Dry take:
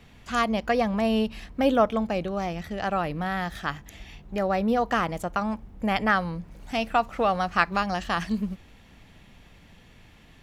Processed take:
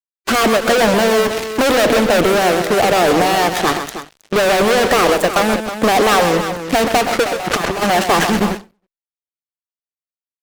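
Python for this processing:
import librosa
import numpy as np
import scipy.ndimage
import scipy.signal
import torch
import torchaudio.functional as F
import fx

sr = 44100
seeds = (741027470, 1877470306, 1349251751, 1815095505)

p1 = scipy.signal.sosfilt(scipy.signal.butter(2, 250.0, 'highpass', fs=sr, output='sos'), x)
p2 = fx.peak_eq(p1, sr, hz=420.0, db=15.0, octaves=1.5)
p3 = fx.fuzz(p2, sr, gain_db=38.0, gate_db=-37.0)
p4 = fx.over_compress(p3, sr, threshold_db=-20.0, ratio=-0.5, at=(7.23, 7.81), fade=0.02)
p5 = fx.hpss(p4, sr, part='percussive', gain_db=4)
p6 = p5 + fx.echo_multitap(p5, sr, ms=(129, 317), db=(-9.0, -10.5), dry=0)
y = fx.end_taper(p6, sr, db_per_s=210.0)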